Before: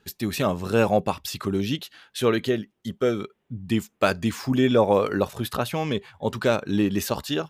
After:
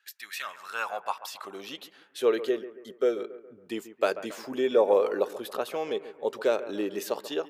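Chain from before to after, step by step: high-pass sweep 1700 Hz -> 430 Hz, 0.39–2.05; analogue delay 0.138 s, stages 2048, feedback 45%, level -14 dB; gain -8 dB

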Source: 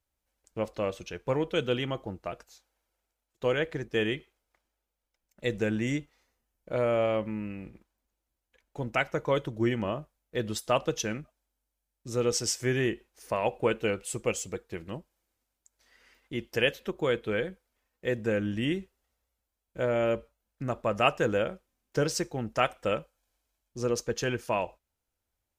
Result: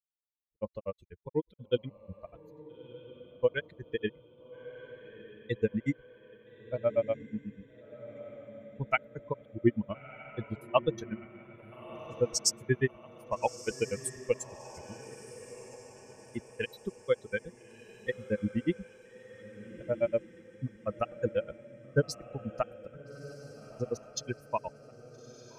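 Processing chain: per-bin expansion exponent 2; grains 77 ms, grains 8.2/s, spray 35 ms, pitch spread up and down by 0 st; diffused feedback echo 1.314 s, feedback 49%, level -14.5 dB; gain +7.5 dB

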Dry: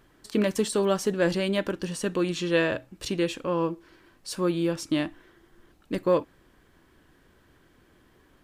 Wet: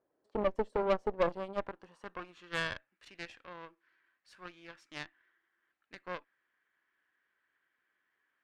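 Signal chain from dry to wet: band-pass sweep 560 Hz -> 1800 Hz, 1.06–2.92; added harmonics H 4 -10 dB, 6 -29 dB, 7 -20 dB, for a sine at -15.5 dBFS; soft clip -18.5 dBFS, distortion -14 dB

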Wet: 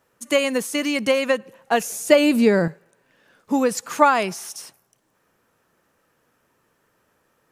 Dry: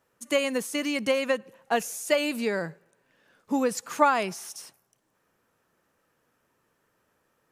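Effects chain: 1.9–2.68 low shelf 450 Hz +11 dB; gain +5.5 dB

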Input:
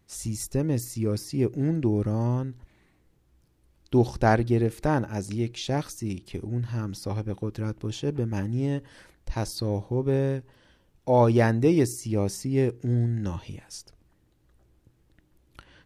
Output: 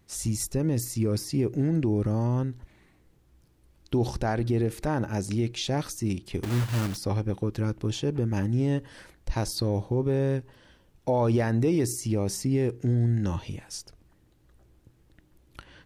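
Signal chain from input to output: 6.43–6.98 block floating point 3-bit; limiter -19.5 dBFS, peak gain reduction 11.5 dB; gain +3 dB

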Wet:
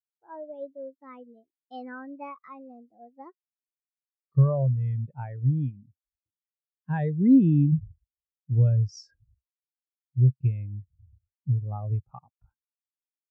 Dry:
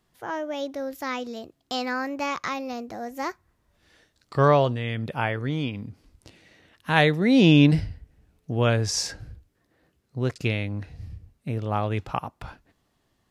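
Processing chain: dynamic EQ 130 Hz, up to +7 dB, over -39 dBFS, Q 3.3; compressor 6:1, threshold -20 dBFS, peak gain reduction 10.5 dB; spectral expander 2.5:1

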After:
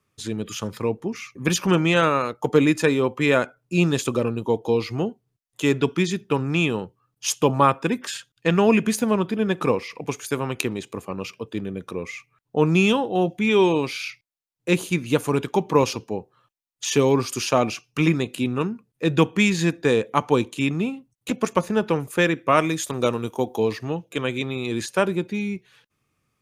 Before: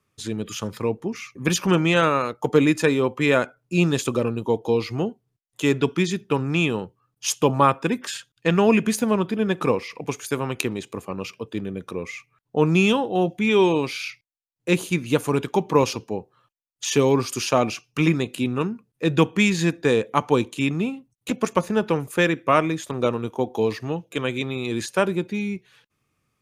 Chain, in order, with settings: 22.57–23.55 high shelf 3600 Hz -> 5800 Hz +11.5 dB

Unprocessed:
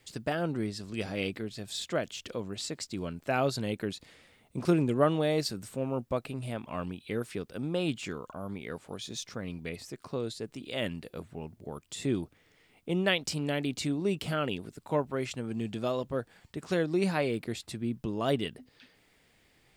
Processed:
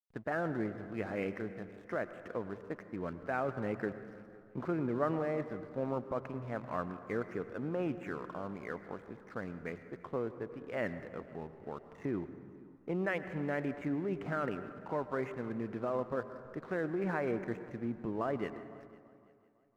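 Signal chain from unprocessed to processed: steep low-pass 1900 Hz 36 dB/oct; tilt +2.5 dB/oct; in parallel at +1 dB: negative-ratio compressor -34 dBFS, ratio -0.5; on the sum: backlash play -44 dBFS; multi-head echo 0.168 s, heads second and third, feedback 42%, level -24 dB; on a send at -11.5 dB: reverb RT60 2.0 s, pre-delay 92 ms; on the sum: gain -6.5 dB

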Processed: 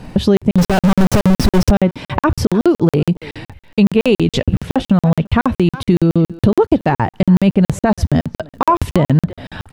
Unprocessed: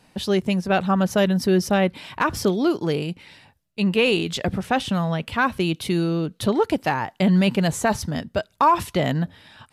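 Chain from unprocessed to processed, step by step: 0.58–1.71 infinite clipping; tilt -3 dB/oct; compressor 4:1, threshold -29 dBFS, peak gain reduction 17.5 dB; crackle 64/s -60 dBFS; speakerphone echo 0.34 s, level -17 dB; maximiser +19 dB; crackling interface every 0.14 s, samples 2048, zero, from 0.37; gain -1 dB

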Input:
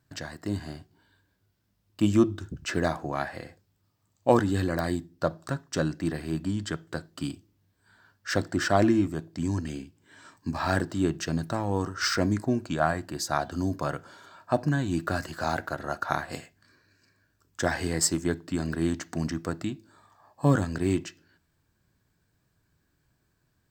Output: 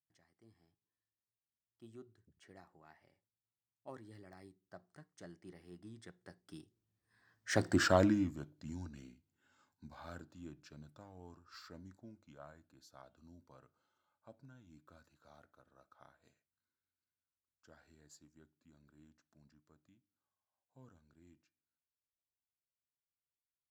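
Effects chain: Doppler pass-by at 7.75, 33 m/s, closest 6.2 m; gain -2.5 dB

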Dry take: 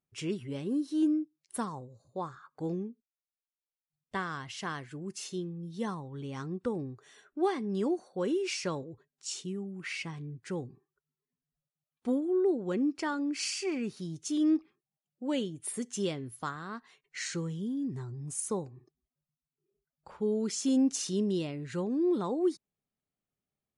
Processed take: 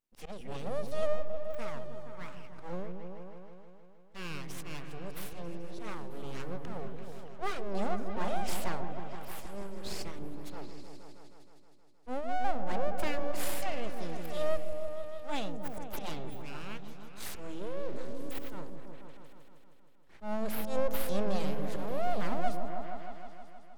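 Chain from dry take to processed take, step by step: auto swell 0.129 s; full-wave rectifier; repeats that get brighter 0.157 s, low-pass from 400 Hz, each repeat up 1 oct, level -3 dB

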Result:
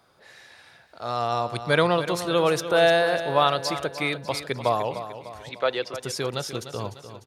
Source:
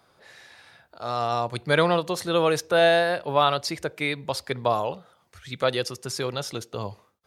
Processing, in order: 5.49–5.94 three-band isolator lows -17 dB, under 290 Hz, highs -23 dB, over 4400 Hz; feedback echo 0.299 s, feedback 49%, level -11.5 dB

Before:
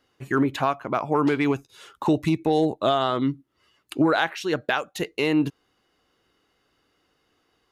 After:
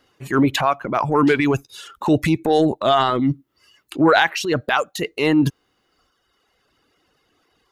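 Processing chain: reverb removal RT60 1.2 s; transient shaper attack -6 dB, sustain +7 dB; gain +7 dB

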